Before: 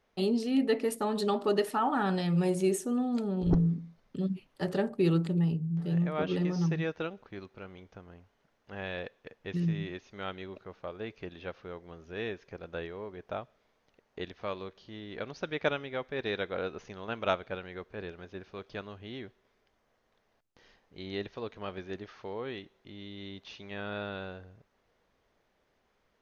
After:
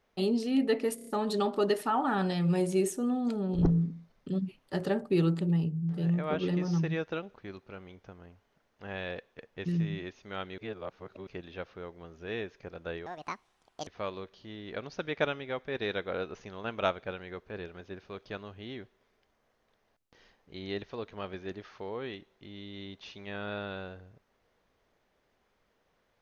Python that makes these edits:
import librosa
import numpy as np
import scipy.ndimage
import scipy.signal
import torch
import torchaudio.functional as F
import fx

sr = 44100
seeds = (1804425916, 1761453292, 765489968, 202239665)

y = fx.edit(x, sr, fx.stutter(start_s=0.95, slice_s=0.03, count=5),
    fx.reverse_span(start_s=10.46, length_s=0.69),
    fx.speed_span(start_s=12.94, length_s=1.37, speed=1.69), tone=tone)